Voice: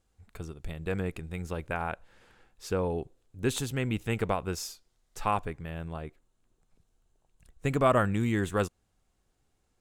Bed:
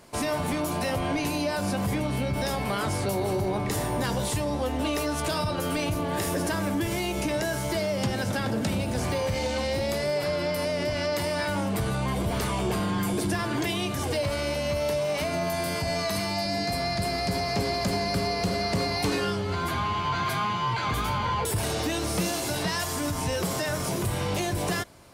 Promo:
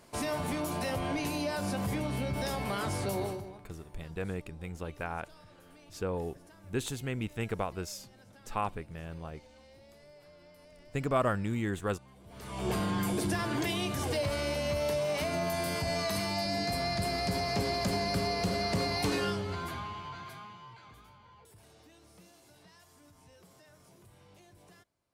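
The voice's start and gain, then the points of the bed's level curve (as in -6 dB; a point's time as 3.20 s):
3.30 s, -4.5 dB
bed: 3.23 s -5.5 dB
3.70 s -29 dB
12.21 s -29 dB
12.69 s -4 dB
19.29 s -4 dB
21.18 s -30.5 dB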